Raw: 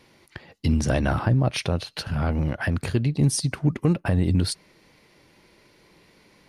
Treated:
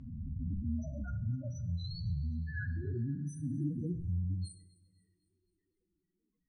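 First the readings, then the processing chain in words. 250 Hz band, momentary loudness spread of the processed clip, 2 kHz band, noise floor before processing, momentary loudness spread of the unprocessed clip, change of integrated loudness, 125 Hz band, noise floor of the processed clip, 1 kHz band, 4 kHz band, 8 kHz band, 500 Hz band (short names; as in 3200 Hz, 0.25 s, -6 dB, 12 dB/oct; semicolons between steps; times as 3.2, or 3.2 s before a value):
-14.0 dB, 4 LU, -16.5 dB, -58 dBFS, 7 LU, -13.5 dB, -12.5 dB, -84 dBFS, under -25 dB, -20.5 dB, -24.5 dB, -21.0 dB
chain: spectral swells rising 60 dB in 2.01 s; notch 2400 Hz, Q 5.7; gate -40 dBFS, range -17 dB; ten-band EQ 125 Hz -7 dB, 250 Hz -3 dB, 500 Hz -5 dB, 1000 Hz -4 dB, 4000 Hz -5 dB, 8000 Hz +6 dB; limiter -14 dBFS, peak gain reduction 10.5 dB; compressor 10:1, threshold -29 dBFS, peak gain reduction 10.5 dB; wow and flutter 74 cents; loudest bins only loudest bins 4; air absorption 67 m; on a send: thinning echo 0.255 s, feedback 44%, high-pass 890 Hz, level -21 dB; on the sum: two-slope reverb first 0.52 s, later 2.1 s, from -18 dB, DRR 7.5 dB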